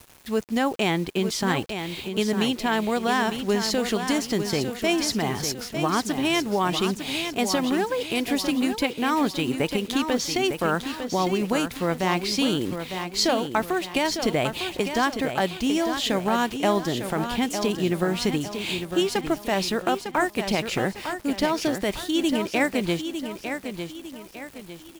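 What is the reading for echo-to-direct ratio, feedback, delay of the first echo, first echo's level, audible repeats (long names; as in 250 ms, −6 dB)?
−7.0 dB, 40%, 903 ms, −8.0 dB, 4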